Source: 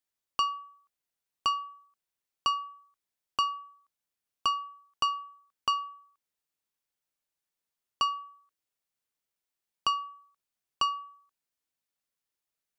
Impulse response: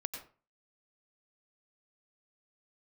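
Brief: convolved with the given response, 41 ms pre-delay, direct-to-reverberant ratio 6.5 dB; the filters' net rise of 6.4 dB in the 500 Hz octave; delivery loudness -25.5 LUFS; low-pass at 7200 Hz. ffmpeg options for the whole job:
-filter_complex "[0:a]lowpass=7.2k,equalizer=f=500:t=o:g=8,asplit=2[a][b];[1:a]atrim=start_sample=2205,adelay=41[c];[b][c]afir=irnorm=-1:irlink=0,volume=-6.5dB[d];[a][d]amix=inputs=2:normalize=0,volume=5.5dB"

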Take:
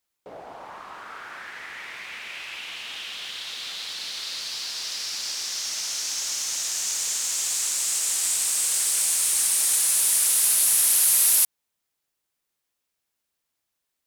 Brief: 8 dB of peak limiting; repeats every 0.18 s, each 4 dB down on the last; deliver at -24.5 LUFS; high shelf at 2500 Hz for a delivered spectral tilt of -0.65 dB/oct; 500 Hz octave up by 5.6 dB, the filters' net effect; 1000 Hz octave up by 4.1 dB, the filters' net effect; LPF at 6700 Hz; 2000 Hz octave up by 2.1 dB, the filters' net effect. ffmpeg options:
-af "lowpass=6.7k,equalizer=f=500:t=o:g=6,equalizer=f=1k:t=o:g=3.5,equalizer=f=2k:t=o:g=5,highshelf=f=2.5k:g=-7,alimiter=level_in=2dB:limit=-24dB:level=0:latency=1,volume=-2dB,aecho=1:1:180|360|540|720|900|1080|1260|1440|1620:0.631|0.398|0.25|0.158|0.0994|0.0626|0.0394|0.0249|0.0157,volume=7dB"

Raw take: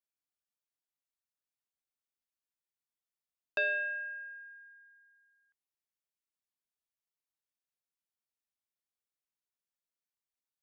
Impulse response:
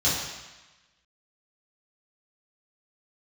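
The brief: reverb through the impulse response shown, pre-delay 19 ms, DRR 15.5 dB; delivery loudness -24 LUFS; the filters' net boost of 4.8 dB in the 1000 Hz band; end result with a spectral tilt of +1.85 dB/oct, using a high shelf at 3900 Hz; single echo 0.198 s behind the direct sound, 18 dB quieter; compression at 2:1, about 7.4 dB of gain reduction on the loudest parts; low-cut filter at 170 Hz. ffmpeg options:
-filter_complex "[0:a]highpass=170,equalizer=f=1k:t=o:g=6,highshelf=f=3.9k:g=8.5,acompressor=threshold=-38dB:ratio=2,aecho=1:1:198:0.126,asplit=2[a][b];[1:a]atrim=start_sample=2205,adelay=19[c];[b][c]afir=irnorm=-1:irlink=0,volume=-29dB[d];[a][d]amix=inputs=2:normalize=0,volume=13.5dB"

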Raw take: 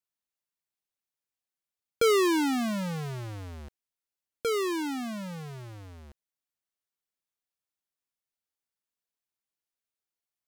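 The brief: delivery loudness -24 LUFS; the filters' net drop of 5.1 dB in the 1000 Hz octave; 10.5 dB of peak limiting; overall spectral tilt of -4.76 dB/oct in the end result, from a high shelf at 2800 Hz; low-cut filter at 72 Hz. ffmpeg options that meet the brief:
-af "highpass=72,equalizer=f=1k:t=o:g=-7.5,highshelf=f=2.8k:g=4,volume=10dB,alimiter=limit=-14.5dB:level=0:latency=1"

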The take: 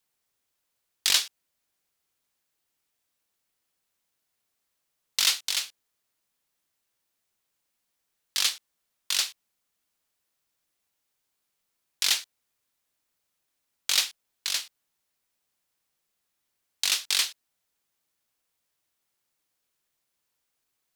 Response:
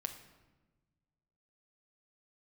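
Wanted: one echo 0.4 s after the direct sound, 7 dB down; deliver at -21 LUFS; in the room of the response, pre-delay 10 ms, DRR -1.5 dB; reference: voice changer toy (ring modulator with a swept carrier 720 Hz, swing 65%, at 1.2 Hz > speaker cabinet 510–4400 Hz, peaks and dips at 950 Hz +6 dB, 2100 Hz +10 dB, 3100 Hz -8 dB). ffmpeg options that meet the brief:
-filter_complex "[0:a]aecho=1:1:400:0.447,asplit=2[a][b];[1:a]atrim=start_sample=2205,adelay=10[c];[b][c]afir=irnorm=-1:irlink=0,volume=2.5dB[d];[a][d]amix=inputs=2:normalize=0,aeval=exprs='val(0)*sin(2*PI*720*n/s+720*0.65/1.2*sin(2*PI*1.2*n/s))':c=same,highpass=510,equalizer=f=950:t=q:w=4:g=6,equalizer=f=2.1k:t=q:w=4:g=10,equalizer=f=3.1k:t=q:w=4:g=-8,lowpass=f=4.4k:w=0.5412,lowpass=f=4.4k:w=1.3066,volume=8dB"

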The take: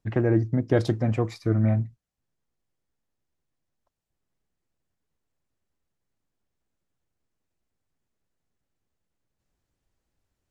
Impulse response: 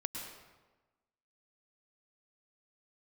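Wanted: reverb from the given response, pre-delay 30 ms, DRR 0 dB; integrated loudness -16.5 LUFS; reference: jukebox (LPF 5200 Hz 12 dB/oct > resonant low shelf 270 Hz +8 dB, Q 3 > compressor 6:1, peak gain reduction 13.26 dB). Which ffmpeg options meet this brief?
-filter_complex "[0:a]asplit=2[a][b];[1:a]atrim=start_sample=2205,adelay=30[c];[b][c]afir=irnorm=-1:irlink=0,volume=-1dB[d];[a][d]amix=inputs=2:normalize=0,lowpass=5.2k,lowshelf=f=270:t=q:w=3:g=8,acompressor=threshold=-20dB:ratio=6,volume=8dB"

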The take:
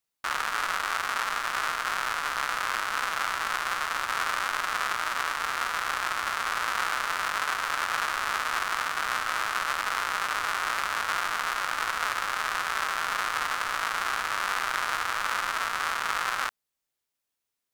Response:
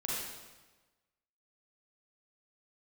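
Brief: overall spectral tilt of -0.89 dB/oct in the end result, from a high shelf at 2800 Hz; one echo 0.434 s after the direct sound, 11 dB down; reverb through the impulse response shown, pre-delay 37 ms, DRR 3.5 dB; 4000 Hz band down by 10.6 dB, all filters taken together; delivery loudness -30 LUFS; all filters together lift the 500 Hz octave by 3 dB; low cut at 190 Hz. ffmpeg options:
-filter_complex "[0:a]highpass=190,equalizer=f=500:t=o:g=4.5,highshelf=f=2.8k:g=-7.5,equalizer=f=4k:t=o:g=-8.5,aecho=1:1:434:0.282,asplit=2[a][b];[1:a]atrim=start_sample=2205,adelay=37[c];[b][c]afir=irnorm=-1:irlink=0,volume=-7.5dB[d];[a][d]amix=inputs=2:normalize=0,volume=-1.5dB"

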